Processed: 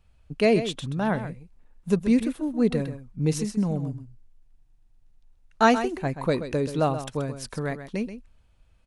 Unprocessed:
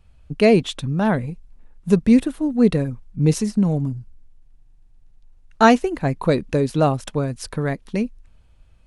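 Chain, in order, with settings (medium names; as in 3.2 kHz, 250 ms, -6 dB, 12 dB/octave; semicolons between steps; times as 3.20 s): bass shelf 360 Hz -3.5 dB; on a send: delay 130 ms -11 dB; on the sum: trim -4.5 dB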